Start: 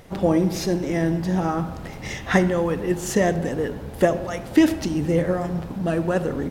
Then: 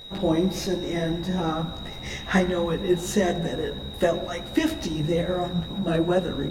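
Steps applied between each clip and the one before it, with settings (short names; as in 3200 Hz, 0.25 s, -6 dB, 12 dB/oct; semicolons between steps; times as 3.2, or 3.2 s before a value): whine 3800 Hz -36 dBFS; chorus voices 6, 1.4 Hz, delay 17 ms, depth 3 ms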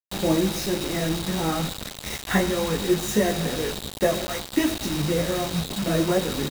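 doubler 19 ms -13 dB; bit-crush 5-bit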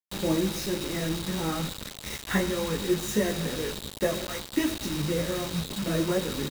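bell 720 Hz -7 dB 0.28 oct; gain -4 dB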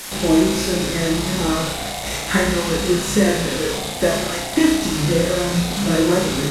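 delta modulation 64 kbps, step -33.5 dBFS; on a send: flutter echo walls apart 5.9 m, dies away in 0.62 s; on the sum: gain +7.5 dB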